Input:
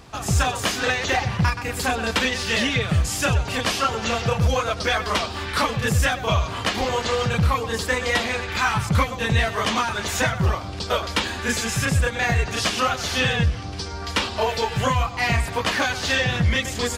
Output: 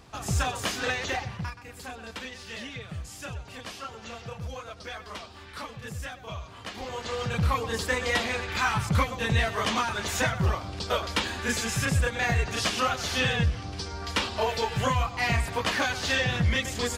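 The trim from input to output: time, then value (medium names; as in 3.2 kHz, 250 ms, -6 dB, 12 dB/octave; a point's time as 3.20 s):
1.02 s -6.5 dB
1.60 s -17 dB
6.55 s -17 dB
7.53 s -4.5 dB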